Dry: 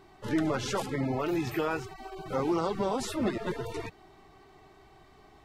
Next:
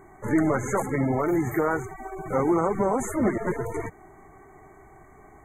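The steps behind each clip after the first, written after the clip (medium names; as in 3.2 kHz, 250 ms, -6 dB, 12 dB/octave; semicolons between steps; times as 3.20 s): FFT band-reject 2.3–6.2 kHz; trim +6 dB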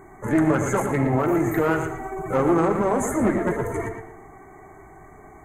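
single-diode clipper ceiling -21 dBFS; filtered feedback delay 115 ms, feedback 27%, low-pass 4.8 kHz, level -7 dB; Schroeder reverb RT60 0.78 s, combs from 28 ms, DRR 12.5 dB; trim +4 dB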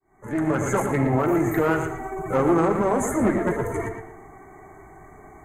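fade-in on the opening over 0.72 s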